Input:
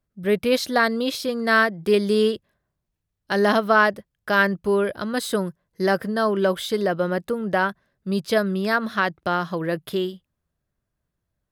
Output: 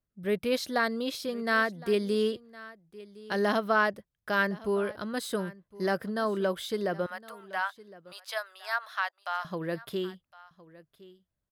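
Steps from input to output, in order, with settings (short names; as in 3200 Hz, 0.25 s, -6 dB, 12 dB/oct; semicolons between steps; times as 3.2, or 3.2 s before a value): 7.06–9.45 steep high-pass 710 Hz 36 dB/oct; echo 1.062 s -20 dB; gain -8 dB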